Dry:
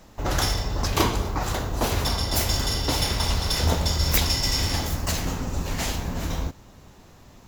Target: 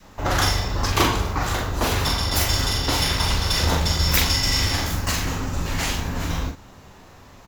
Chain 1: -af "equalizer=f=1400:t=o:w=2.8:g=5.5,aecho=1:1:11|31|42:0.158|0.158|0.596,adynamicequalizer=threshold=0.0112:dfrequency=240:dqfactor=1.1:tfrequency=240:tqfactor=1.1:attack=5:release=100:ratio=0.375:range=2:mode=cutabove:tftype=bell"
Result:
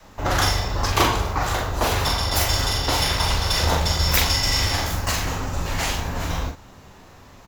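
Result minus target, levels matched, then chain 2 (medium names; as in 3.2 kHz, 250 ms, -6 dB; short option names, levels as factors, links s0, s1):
250 Hz band -2.5 dB
-af "equalizer=f=1400:t=o:w=2.8:g=5.5,aecho=1:1:11|31|42:0.158|0.158|0.596,adynamicequalizer=threshold=0.0112:dfrequency=690:dqfactor=1.1:tfrequency=690:tqfactor=1.1:attack=5:release=100:ratio=0.375:range=2:mode=cutabove:tftype=bell"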